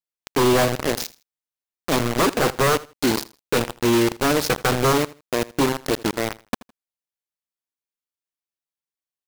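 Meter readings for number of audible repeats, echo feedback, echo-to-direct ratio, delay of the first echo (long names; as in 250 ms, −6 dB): 2, 23%, −20.0 dB, 80 ms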